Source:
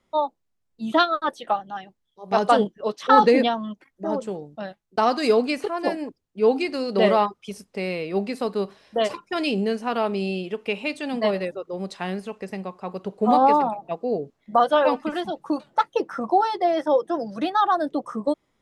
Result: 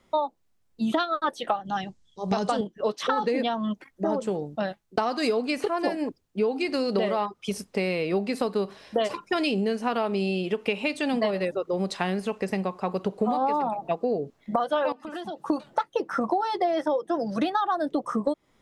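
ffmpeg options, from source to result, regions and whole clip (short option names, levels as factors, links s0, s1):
-filter_complex "[0:a]asettb=1/sr,asplit=3[s0][s1][s2];[s0]atrim=end=1.654[s3];[s1]atrim=start=1.65:end=2.61,asetpts=PTS-STARTPTS,afade=t=in:d=0.004:c=qsin,afade=t=out:st=0.956:d=0.004:c=qsin,lowpass=f=7800:w=0.5412,lowpass=f=7800:w=1.3066,bass=f=250:g=9,treble=f=4000:g=11[s4];[s2]atrim=start=2.606[s5];[s3][s4]acrossfade=d=0.004:c1=hsin:c2=qsin[s6];[s6][s5]acrossfade=d=0.004:c1=qsin:c2=hsin,asettb=1/sr,asplit=3[s7][s8][s9];[s7]atrim=end=14.924[s10];[s8]atrim=start=14.92:end=15.48,asetpts=PTS-STARTPTS,afade=t=in:d=0.004:c=qsin,afade=t=out:st=0.556:d=0.004:c=qsin,highpass=f=150:p=1,bandreject=f=2200:w=6.8,acompressor=threshold=0.0141:ratio=8:attack=3.2:release=140:knee=1:detection=peak[s11];[s9]atrim=start=15.476[s12];[s10][s11]acrossfade=d=0.004:c1=hsin:c2=qsin[s13];[s13][s12]acrossfade=d=0.004:c1=qsin:c2=hsin,alimiter=limit=0.266:level=0:latency=1:release=363,acompressor=threshold=0.0355:ratio=6,volume=2.11"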